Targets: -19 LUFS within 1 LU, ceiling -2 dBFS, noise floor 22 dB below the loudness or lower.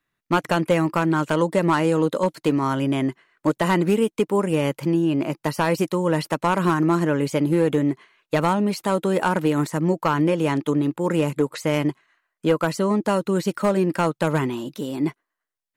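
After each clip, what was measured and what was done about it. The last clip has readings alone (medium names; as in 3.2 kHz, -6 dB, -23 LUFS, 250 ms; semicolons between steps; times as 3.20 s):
clipped samples 0.4%; clipping level -11.0 dBFS; loudness -22.0 LUFS; peak level -11.0 dBFS; loudness target -19.0 LUFS
-> clip repair -11 dBFS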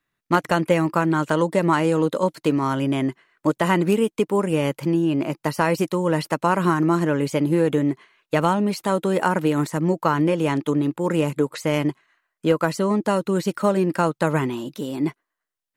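clipped samples 0.0%; loudness -22.0 LUFS; peak level -3.5 dBFS; loudness target -19.0 LUFS
-> trim +3 dB; peak limiter -2 dBFS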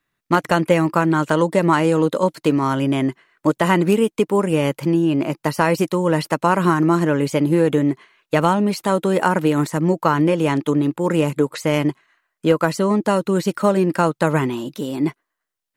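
loudness -19.0 LUFS; peak level -2.0 dBFS; noise floor -80 dBFS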